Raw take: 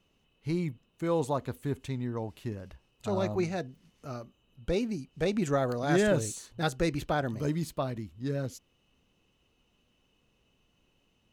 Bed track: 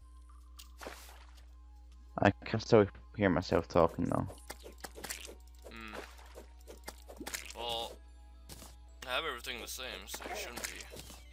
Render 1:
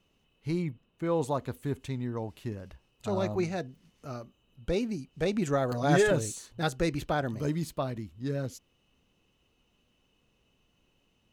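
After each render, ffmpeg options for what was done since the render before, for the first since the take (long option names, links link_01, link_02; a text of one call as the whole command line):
ffmpeg -i in.wav -filter_complex "[0:a]asettb=1/sr,asplit=3[link_01][link_02][link_03];[link_01]atrim=end=0.624[link_04];[link_02]atrim=start=0.62:end=1.21,asetpts=PTS-STARTPTS,afade=type=in:duration=0.004:curve=qsin,afade=type=out:start_time=0.586:duration=0.004:curve=qsin,bass=frequency=250:gain=0,treble=frequency=4000:gain=-9[link_05];[link_03]atrim=start=1.206[link_06];[link_04][link_05]acrossfade=duration=0.004:curve1=hsin:curve2=qsin[link_07];[link_07][link_06]acrossfade=duration=0.004:curve1=qsin:curve2=hsin,asettb=1/sr,asplit=3[link_08][link_09][link_10];[link_08]atrim=end=5.714[link_11];[link_09]atrim=start=5.71:end=6.11,asetpts=PTS-STARTPTS,afade=type=in:duration=0.004:curve=qsin,afade=type=out:start_time=0.396:duration=0.004:curve=qsin,aecho=1:1:7.1:0.83,atrim=end_sample=17640[link_12];[link_10]atrim=start=6.106[link_13];[link_11][link_12]acrossfade=duration=0.004:curve1=hsin:curve2=qsin[link_14];[link_14][link_13]acrossfade=duration=0.004:curve1=qsin:curve2=hsin" out.wav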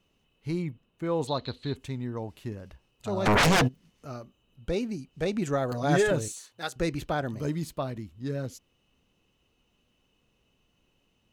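ffmpeg -i in.wav -filter_complex "[0:a]asettb=1/sr,asplit=3[link_01][link_02][link_03];[link_01]atrim=end=1.274[link_04];[link_02]atrim=start=1.27:end=1.76,asetpts=PTS-STARTPTS,afade=type=in:duration=0.004:curve=qsin,afade=type=out:start_time=0.486:duration=0.004:curve=qsin,lowpass=frequency=4100:width_type=q:width=13[link_05];[link_03]atrim=start=1.756[link_06];[link_04][link_05]acrossfade=duration=0.004:curve1=hsin:curve2=qsin[link_07];[link_07][link_06]acrossfade=duration=0.004:curve1=qsin:curve2=hsin,asplit=3[link_08][link_09][link_10];[link_08]afade=type=out:start_time=3.25:duration=0.02[link_11];[link_09]aeval=exprs='0.133*sin(PI/2*7.94*val(0)/0.133)':channel_layout=same,afade=type=in:start_time=3.25:duration=0.02,afade=type=out:start_time=3.67:duration=0.02[link_12];[link_10]afade=type=in:start_time=3.67:duration=0.02[link_13];[link_11][link_12][link_13]amix=inputs=3:normalize=0,asettb=1/sr,asplit=3[link_14][link_15][link_16];[link_14]atrim=end=6.284[link_17];[link_15]atrim=start=6.28:end=6.76,asetpts=PTS-STARTPTS,afade=type=in:duration=0.004:curve=qsin,afade=type=out:start_time=0.476:duration=0.004:curve=qsin,highpass=frequency=960:poles=1[link_18];[link_16]atrim=start=6.756[link_19];[link_17][link_18]acrossfade=duration=0.004:curve1=hsin:curve2=qsin[link_20];[link_20][link_19]acrossfade=duration=0.004:curve1=qsin:curve2=hsin" out.wav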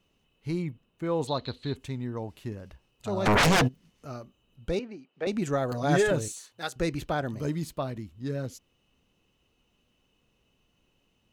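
ffmpeg -i in.wav -filter_complex "[0:a]asettb=1/sr,asplit=3[link_01][link_02][link_03];[link_01]atrim=end=4.794[link_04];[link_02]atrim=start=4.79:end=5.27,asetpts=PTS-STARTPTS,afade=type=in:duration=0.004:curve=qsin,afade=type=out:start_time=0.476:duration=0.004:curve=qsin,highpass=380,lowpass=2600[link_05];[link_03]atrim=start=5.266[link_06];[link_04][link_05]acrossfade=duration=0.004:curve1=hsin:curve2=qsin[link_07];[link_07][link_06]acrossfade=duration=0.004:curve1=qsin:curve2=hsin" out.wav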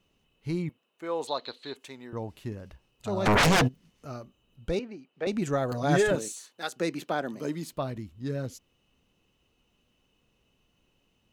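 ffmpeg -i in.wav -filter_complex "[0:a]asettb=1/sr,asplit=3[link_01][link_02][link_03];[link_01]atrim=end=0.694[link_04];[link_02]atrim=start=0.69:end=2.13,asetpts=PTS-STARTPTS,afade=type=in:duration=0.004:curve=qsin,afade=type=out:start_time=1.436:duration=0.004:curve=qsin,highpass=450[link_05];[link_03]atrim=start=2.126[link_06];[link_04][link_05]acrossfade=duration=0.004:curve1=hsin:curve2=qsin[link_07];[link_07][link_06]acrossfade=duration=0.004:curve1=qsin:curve2=hsin,asettb=1/sr,asplit=3[link_08][link_09][link_10];[link_08]atrim=end=6.154[link_11];[link_09]atrim=start=6.15:end=7.73,asetpts=PTS-STARTPTS,afade=type=in:duration=0.004:curve=qsin,afade=type=out:start_time=1.576:duration=0.004:curve=qsin,highpass=frequency=190:width=0.5412,highpass=frequency=190:width=1.3066[link_12];[link_10]atrim=start=7.726[link_13];[link_11][link_12]acrossfade=duration=0.004:curve1=hsin:curve2=qsin[link_14];[link_14][link_13]acrossfade=duration=0.004:curve1=qsin:curve2=hsin" out.wav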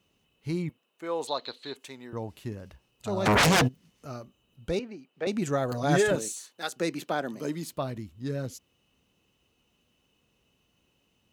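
ffmpeg -i in.wav -af "highpass=53,highshelf=frequency=5100:gain=4" out.wav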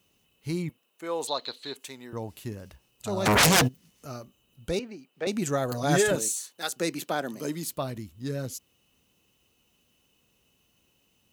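ffmpeg -i in.wav -af "crystalizer=i=1.5:c=0" out.wav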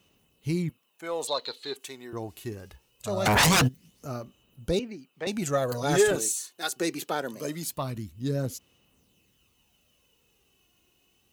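ffmpeg -i in.wav -af "asoftclip=type=tanh:threshold=-13.5dB,aphaser=in_gain=1:out_gain=1:delay=2.8:decay=0.41:speed=0.23:type=sinusoidal" out.wav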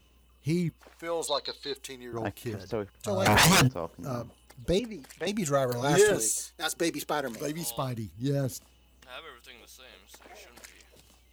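ffmpeg -i in.wav -i bed.wav -filter_complex "[1:a]volume=-8.5dB[link_01];[0:a][link_01]amix=inputs=2:normalize=0" out.wav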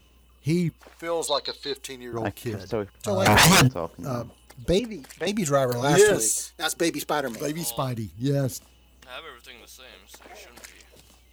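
ffmpeg -i in.wav -af "volume=4.5dB" out.wav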